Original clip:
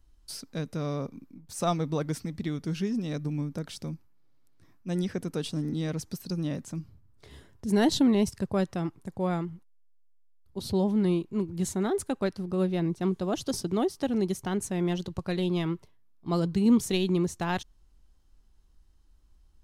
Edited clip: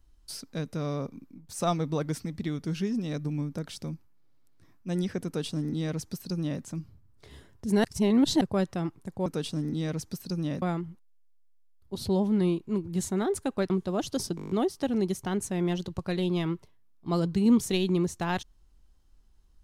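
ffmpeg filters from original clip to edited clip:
-filter_complex "[0:a]asplit=13[a][b][c][d][e][f][g][h][i][j][k][l][m];[a]atrim=end=7.842[n];[b]atrim=start=7.838:end=8.412,asetpts=PTS-STARTPTS,areverse[o];[c]atrim=start=8.408:end=9.262[p];[d]atrim=start=5.258:end=6.622[q];[e]atrim=start=9.258:end=12.342[r];[f]atrim=start=13.038:end=13.722[s];[g]atrim=start=13.698:end=13.722[t];[h]atrim=start=13.698:end=13.722[u];[i]atrim=start=13.698:end=13.722[v];[j]atrim=start=13.698:end=13.722[w];[k]atrim=start=13.698:end=13.722[x];[l]atrim=start=13.698:end=13.722[y];[m]atrim=start=13.698[z];[n][o]acrossfade=d=0.004:c1=hsin:c2=hsin[aa];[aa][p]acrossfade=d=0.004:c1=hsin:c2=hsin[ab];[ab][q]acrossfade=d=0.004:c1=hsin:c2=hsin[ac];[ac][r]acrossfade=d=0.004:c1=hsin:c2=hsin[ad];[ad][s]acrossfade=d=0.004:c1=hsin:c2=hsin[ae];[ae][t]acrossfade=d=0.004:c1=hsin:c2=hsin[af];[af][u]acrossfade=d=0.004:c1=hsin:c2=hsin[ag];[ag][v]acrossfade=d=0.004:c1=hsin:c2=hsin[ah];[ah][w]acrossfade=d=0.004:c1=hsin:c2=hsin[ai];[ai][x]acrossfade=d=0.004:c1=hsin:c2=hsin[aj];[aj][y]acrossfade=d=0.004:c1=hsin:c2=hsin[ak];[ak][z]acrossfade=d=0.004:c1=hsin:c2=hsin"

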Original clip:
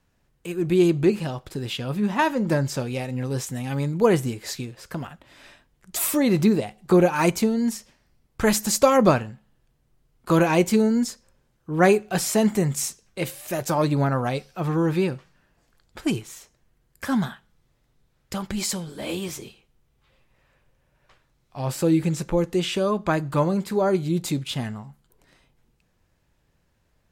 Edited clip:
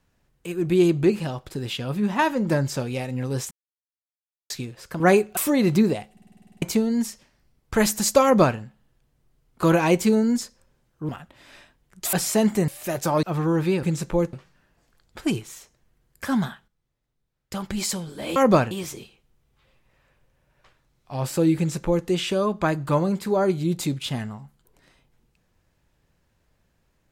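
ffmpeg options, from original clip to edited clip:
-filter_complex "[0:a]asplit=25[a][b][c][d][e][f][g][h][i][j][k][l][m][n][o][p][q][r][s][t][u][v][w][x][y];[a]atrim=end=3.51,asetpts=PTS-STARTPTS,afade=t=out:st=3.506:d=0.004:c=hsin[z];[b]atrim=start=3.51:end=4.5,asetpts=PTS-STARTPTS,volume=0[aa];[c]atrim=start=4.5:end=5.002,asetpts=PTS-STARTPTS,afade=t=in:d=0.004:c=hsin[ab];[d]atrim=start=11.758:end=12.132[ac];[e]atrim=start=6.038:end=6.842[ad];[f]atrim=start=6.788:end=6.842[ae];[g]atrim=start=6.788:end=6.842[af];[h]atrim=start=6.788:end=6.842[ag];[i]atrim=start=6.788:end=6.842[ah];[j]atrim=start=6.788:end=6.842[ai];[k]atrim=start=6.788:end=6.842[aj];[l]atrim=start=6.788:end=6.842[ak];[m]atrim=start=6.788:end=6.842[al];[n]atrim=start=6.788:end=6.842[am];[o]atrim=start=7.288:end=11.762[an];[p]atrim=start=4.998:end=6.042[ao];[q]atrim=start=12.128:end=12.682[ap];[r]atrim=start=13.318:end=13.872[aq];[s]atrim=start=14.528:end=15.132[ar];[t]atrim=start=22.018:end=22.522[as];[u]atrim=start=15.128:end=17.48,asetpts=PTS-STARTPTS,afade=t=out:st=2.112:d=0.24:c=log:silence=0.237137[at];[v]atrim=start=17.48:end=18.32,asetpts=PTS-STARTPTS,volume=-12.5dB[au];[w]atrim=start=18.32:end=19.162,asetpts=PTS-STARTPTS,afade=t=in:d=0.24:c=log:silence=0.237137[av];[x]atrim=start=8.898:end=9.252[aw];[y]atrim=start=19.158[ax];[z][aa][ab]concat=n=3:v=0:a=1[ay];[ay][ac]acrossfade=d=0.004:c1=hsin:c2=hsin[az];[az][ad]acrossfade=d=0.004:c1=hsin:c2=hsin[ba];[ba][ae]acrossfade=d=0.004:c1=hsin:c2=hsin[bb];[bb][af]acrossfade=d=0.004:c1=hsin:c2=hsin[bc];[bc][ag]acrossfade=d=0.004:c1=hsin:c2=hsin[bd];[bd][ah]acrossfade=d=0.004:c1=hsin:c2=hsin[be];[be][ai]acrossfade=d=0.004:c1=hsin:c2=hsin[bf];[bf][aj]acrossfade=d=0.004:c1=hsin:c2=hsin[bg];[bg][ak]acrossfade=d=0.004:c1=hsin:c2=hsin[bh];[bh][al]acrossfade=d=0.004:c1=hsin:c2=hsin[bi];[bi][am]acrossfade=d=0.004:c1=hsin:c2=hsin[bj];[bj][an]acrossfade=d=0.004:c1=hsin:c2=hsin[bk];[bk][ao]acrossfade=d=0.004:c1=hsin:c2=hsin[bl];[bl][ap]acrossfade=d=0.004:c1=hsin:c2=hsin[bm];[bm][aq]acrossfade=d=0.004:c1=hsin:c2=hsin[bn];[bn][ar]acrossfade=d=0.004:c1=hsin:c2=hsin[bo];[bo][as]acrossfade=d=0.004:c1=hsin:c2=hsin[bp];[at][au][av]concat=n=3:v=0:a=1[bq];[bp][bq]acrossfade=d=0.004:c1=hsin:c2=hsin[br];[br][aw]acrossfade=d=0.004:c1=hsin:c2=hsin[bs];[bs][ax]acrossfade=d=0.004:c1=hsin:c2=hsin"

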